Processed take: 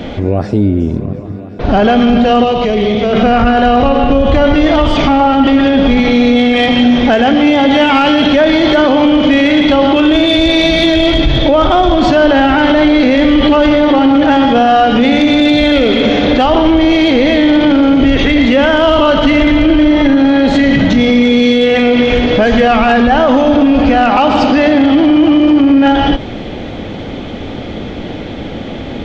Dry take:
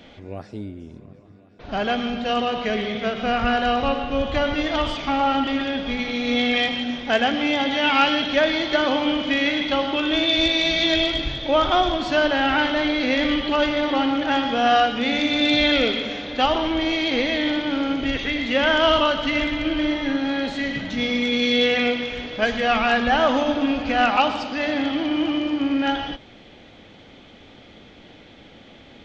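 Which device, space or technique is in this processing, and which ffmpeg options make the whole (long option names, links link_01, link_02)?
mastering chain: -filter_complex "[0:a]equalizer=frequency=170:width_type=o:width=2.5:gain=-1.5,acompressor=threshold=-25dB:ratio=2,asoftclip=type=tanh:threshold=-14dB,tiltshelf=frequency=930:gain=6,asoftclip=type=hard:threshold=-14dB,alimiter=level_in=22.5dB:limit=-1dB:release=50:level=0:latency=1,asettb=1/sr,asplit=3[link_01][link_02][link_03];[link_01]atrim=end=2.444[link_04];[link_02]atrim=start=2.44:end=3.13,asetpts=PTS-STARTPTS,afade=type=in:duration=0.004:curve=qsin,afade=type=out:start_time=0.686:duration=0.004:curve=qsin,equalizer=frequency=250:width_type=o:width=0.67:gain=-6,equalizer=frequency=630:width_type=o:width=0.67:gain=-3,equalizer=frequency=1600:width_type=o:width=0.67:gain=-10[link_05];[link_03]atrim=start=3.126[link_06];[link_04][link_05]acrossfade=duration=0.004:curve1=hsin:curve2=qsin[link_07];[link_07][link_06]acrossfade=duration=0.004:curve1=qsin:curve2=hsin,volume=-1dB"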